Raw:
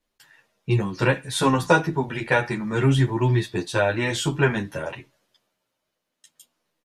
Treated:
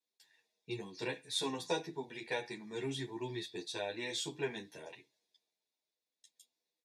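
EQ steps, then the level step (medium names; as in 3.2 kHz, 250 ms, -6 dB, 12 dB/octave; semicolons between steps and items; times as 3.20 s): two resonant band-passes 1.3 kHz, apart 2.7 oct; tilt EQ +2 dB/octave; static phaser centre 1.3 kHz, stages 4; +8.0 dB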